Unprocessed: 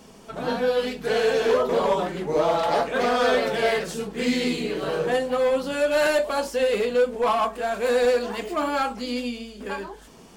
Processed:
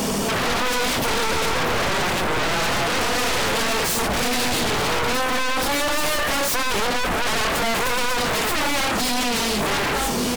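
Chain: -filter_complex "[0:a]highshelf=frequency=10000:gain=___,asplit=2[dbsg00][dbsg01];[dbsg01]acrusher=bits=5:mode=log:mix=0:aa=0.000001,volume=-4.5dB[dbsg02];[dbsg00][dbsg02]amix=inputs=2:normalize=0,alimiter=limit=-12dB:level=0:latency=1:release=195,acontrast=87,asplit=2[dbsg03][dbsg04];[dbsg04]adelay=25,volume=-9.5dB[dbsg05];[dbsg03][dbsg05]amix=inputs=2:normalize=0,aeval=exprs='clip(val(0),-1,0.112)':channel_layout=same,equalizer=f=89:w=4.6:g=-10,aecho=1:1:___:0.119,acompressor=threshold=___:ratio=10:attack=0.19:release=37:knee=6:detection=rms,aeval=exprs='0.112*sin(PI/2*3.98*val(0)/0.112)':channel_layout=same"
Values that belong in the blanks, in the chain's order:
8, 1179, -22dB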